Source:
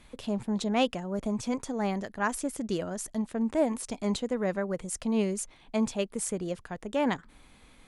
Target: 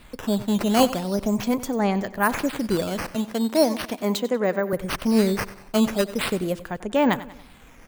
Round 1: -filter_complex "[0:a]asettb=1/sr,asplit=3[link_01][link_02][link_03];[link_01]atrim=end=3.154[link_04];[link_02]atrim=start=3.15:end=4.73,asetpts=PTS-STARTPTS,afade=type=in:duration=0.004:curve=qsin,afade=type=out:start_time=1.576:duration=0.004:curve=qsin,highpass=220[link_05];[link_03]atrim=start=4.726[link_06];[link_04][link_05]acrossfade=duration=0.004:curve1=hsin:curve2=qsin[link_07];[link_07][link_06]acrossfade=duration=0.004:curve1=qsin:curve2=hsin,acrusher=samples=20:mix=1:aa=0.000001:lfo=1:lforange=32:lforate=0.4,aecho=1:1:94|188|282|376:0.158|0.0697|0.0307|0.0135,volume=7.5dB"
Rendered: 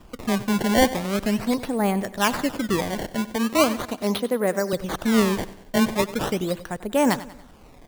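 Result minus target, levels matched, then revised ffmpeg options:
sample-and-hold swept by an LFO: distortion +7 dB
-filter_complex "[0:a]asettb=1/sr,asplit=3[link_01][link_02][link_03];[link_01]atrim=end=3.154[link_04];[link_02]atrim=start=3.15:end=4.73,asetpts=PTS-STARTPTS,afade=type=in:duration=0.004:curve=qsin,afade=type=out:start_time=1.576:duration=0.004:curve=qsin,highpass=220[link_05];[link_03]atrim=start=4.726[link_06];[link_04][link_05]acrossfade=duration=0.004:curve1=hsin:curve2=qsin[link_07];[link_07][link_06]acrossfade=duration=0.004:curve1=qsin:curve2=hsin,acrusher=samples=7:mix=1:aa=0.000001:lfo=1:lforange=11.2:lforate=0.4,aecho=1:1:94|188|282|376:0.158|0.0697|0.0307|0.0135,volume=7.5dB"

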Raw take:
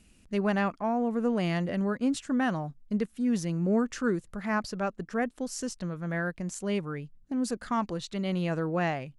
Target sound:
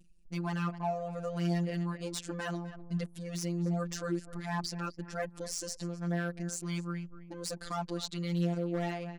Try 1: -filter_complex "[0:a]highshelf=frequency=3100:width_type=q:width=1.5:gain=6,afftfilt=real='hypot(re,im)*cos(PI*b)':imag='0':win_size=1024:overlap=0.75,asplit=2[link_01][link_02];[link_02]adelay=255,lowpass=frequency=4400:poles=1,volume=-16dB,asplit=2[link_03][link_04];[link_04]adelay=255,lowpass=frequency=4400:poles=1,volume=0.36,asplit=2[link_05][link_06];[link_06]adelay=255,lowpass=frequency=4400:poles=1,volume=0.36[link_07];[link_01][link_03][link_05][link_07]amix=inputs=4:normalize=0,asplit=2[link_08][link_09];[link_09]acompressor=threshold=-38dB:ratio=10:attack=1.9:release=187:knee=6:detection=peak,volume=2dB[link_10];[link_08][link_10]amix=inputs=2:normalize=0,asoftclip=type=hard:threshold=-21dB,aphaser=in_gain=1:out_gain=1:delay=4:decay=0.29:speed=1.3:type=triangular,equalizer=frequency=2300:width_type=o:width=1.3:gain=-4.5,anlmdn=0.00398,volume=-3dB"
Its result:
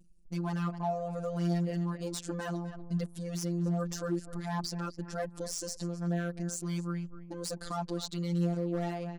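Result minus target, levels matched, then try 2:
downward compressor: peak gain reduction −10.5 dB; 2,000 Hz band −4.5 dB
-filter_complex "[0:a]highshelf=frequency=3100:width_type=q:width=1.5:gain=6,afftfilt=real='hypot(re,im)*cos(PI*b)':imag='0':win_size=1024:overlap=0.75,asplit=2[link_01][link_02];[link_02]adelay=255,lowpass=frequency=4400:poles=1,volume=-16dB,asplit=2[link_03][link_04];[link_04]adelay=255,lowpass=frequency=4400:poles=1,volume=0.36,asplit=2[link_05][link_06];[link_06]adelay=255,lowpass=frequency=4400:poles=1,volume=0.36[link_07];[link_01][link_03][link_05][link_07]amix=inputs=4:normalize=0,asplit=2[link_08][link_09];[link_09]acompressor=threshold=-49.5dB:ratio=10:attack=1.9:release=187:knee=6:detection=peak,volume=2dB[link_10];[link_08][link_10]amix=inputs=2:normalize=0,asoftclip=type=hard:threshold=-21dB,aphaser=in_gain=1:out_gain=1:delay=4:decay=0.29:speed=1.3:type=triangular,equalizer=frequency=2300:width_type=o:width=1.3:gain=2,anlmdn=0.00398,volume=-3dB"

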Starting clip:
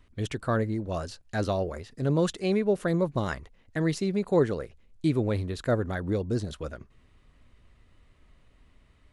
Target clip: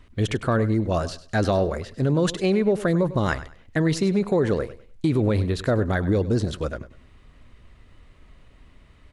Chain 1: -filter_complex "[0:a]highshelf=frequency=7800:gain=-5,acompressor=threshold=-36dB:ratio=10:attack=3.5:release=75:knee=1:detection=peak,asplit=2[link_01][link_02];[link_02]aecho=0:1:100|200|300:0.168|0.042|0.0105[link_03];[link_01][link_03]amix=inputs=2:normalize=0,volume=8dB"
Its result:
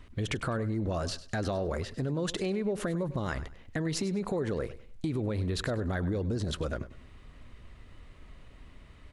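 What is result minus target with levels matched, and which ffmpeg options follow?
downward compressor: peak gain reduction +11 dB
-filter_complex "[0:a]highshelf=frequency=7800:gain=-5,acompressor=threshold=-24dB:ratio=10:attack=3.5:release=75:knee=1:detection=peak,asplit=2[link_01][link_02];[link_02]aecho=0:1:100|200|300:0.168|0.042|0.0105[link_03];[link_01][link_03]amix=inputs=2:normalize=0,volume=8dB"

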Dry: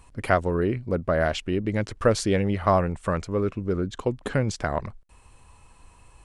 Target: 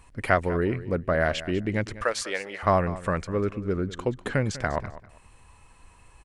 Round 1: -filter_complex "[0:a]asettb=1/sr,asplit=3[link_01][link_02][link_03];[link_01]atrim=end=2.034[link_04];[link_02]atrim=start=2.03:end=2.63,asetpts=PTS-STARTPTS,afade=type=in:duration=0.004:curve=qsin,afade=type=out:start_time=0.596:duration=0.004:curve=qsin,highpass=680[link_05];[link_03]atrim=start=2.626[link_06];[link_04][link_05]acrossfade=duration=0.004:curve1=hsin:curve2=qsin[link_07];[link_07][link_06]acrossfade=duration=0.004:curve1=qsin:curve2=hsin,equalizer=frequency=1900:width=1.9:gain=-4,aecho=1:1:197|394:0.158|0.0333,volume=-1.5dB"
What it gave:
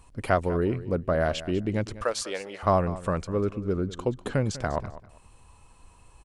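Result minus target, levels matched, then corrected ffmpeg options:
2,000 Hz band −5.5 dB
-filter_complex "[0:a]asettb=1/sr,asplit=3[link_01][link_02][link_03];[link_01]atrim=end=2.034[link_04];[link_02]atrim=start=2.03:end=2.63,asetpts=PTS-STARTPTS,afade=type=in:duration=0.004:curve=qsin,afade=type=out:start_time=0.596:duration=0.004:curve=qsin,highpass=680[link_05];[link_03]atrim=start=2.626[link_06];[link_04][link_05]acrossfade=duration=0.004:curve1=hsin:curve2=qsin[link_07];[link_07][link_06]acrossfade=duration=0.004:curve1=qsin:curve2=hsin,equalizer=frequency=1900:width=1.9:gain=5,aecho=1:1:197|394:0.158|0.0333,volume=-1.5dB"

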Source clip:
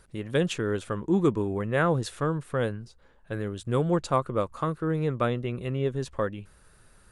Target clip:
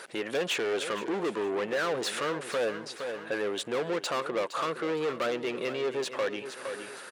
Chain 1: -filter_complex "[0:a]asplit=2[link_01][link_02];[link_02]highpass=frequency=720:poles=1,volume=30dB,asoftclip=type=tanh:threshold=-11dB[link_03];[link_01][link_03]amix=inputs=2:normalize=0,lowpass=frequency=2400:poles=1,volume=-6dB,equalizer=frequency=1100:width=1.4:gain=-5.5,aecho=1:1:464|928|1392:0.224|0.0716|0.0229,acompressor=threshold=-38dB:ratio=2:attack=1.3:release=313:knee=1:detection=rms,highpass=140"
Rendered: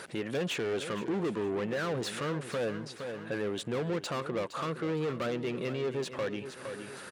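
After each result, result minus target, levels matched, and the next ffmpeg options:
125 Hz band +11.5 dB; downward compressor: peak gain reduction +5 dB
-filter_complex "[0:a]asplit=2[link_01][link_02];[link_02]highpass=frequency=720:poles=1,volume=30dB,asoftclip=type=tanh:threshold=-11dB[link_03];[link_01][link_03]amix=inputs=2:normalize=0,lowpass=frequency=2400:poles=1,volume=-6dB,equalizer=frequency=1100:width=1.4:gain=-5.5,aecho=1:1:464|928|1392:0.224|0.0716|0.0229,acompressor=threshold=-38dB:ratio=2:attack=1.3:release=313:knee=1:detection=rms,highpass=390"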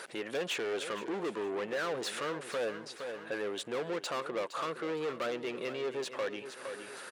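downward compressor: peak gain reduction +5 dB
-filter_complex "[0:a]asplit=2[link_01][link_02];[link_02]highpass=frequency=720:poles=1,volume=30dB,asoftclip=type=tanh:threshold=-11dB[link_03];[link_01][link_03]amix=inputs=2:normalize=0,lowpass=frequency=2400:poles=1,volume=-6dB,equalizer=frequency=1100:width=1.4:gain=-5.5,aecho=1:1:464|928|1392:0.224|0.0716|0.0229,acompressor=threshold=-28dB:ratio=2:attack=1.3:release=313:knee=1:detection=rms,highpass=390"

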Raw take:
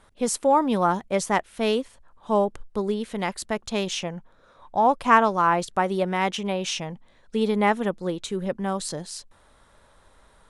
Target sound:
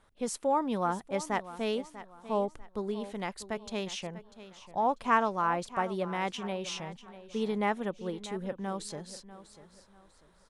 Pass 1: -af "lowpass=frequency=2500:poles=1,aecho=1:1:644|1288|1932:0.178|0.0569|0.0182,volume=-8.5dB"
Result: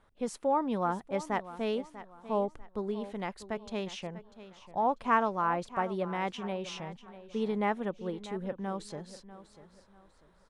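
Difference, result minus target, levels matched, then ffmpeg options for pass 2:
8,000 Hz band −7.0 dB
-af "lowpass=frequency=9200:poles=1,aecho=1:1:644|1288|1932:0.178|0.0569|0.0182,volume=-8.5dB"

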